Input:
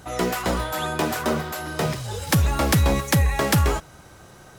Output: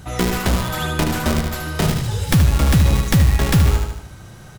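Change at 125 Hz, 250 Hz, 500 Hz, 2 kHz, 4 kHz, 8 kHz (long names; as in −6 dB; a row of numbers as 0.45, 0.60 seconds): +7.0, +5.0, −0.5, +1.5, +3.5, +2.0 decibels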